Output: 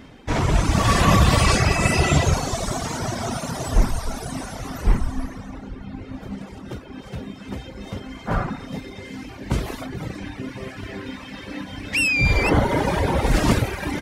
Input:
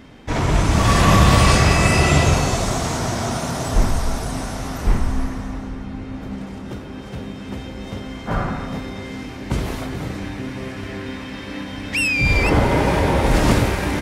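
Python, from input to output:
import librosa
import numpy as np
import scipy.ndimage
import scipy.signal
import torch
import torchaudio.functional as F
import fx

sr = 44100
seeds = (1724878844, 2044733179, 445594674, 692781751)

y = fx.dereverb_blind(x, sr, rt60_s=1.6)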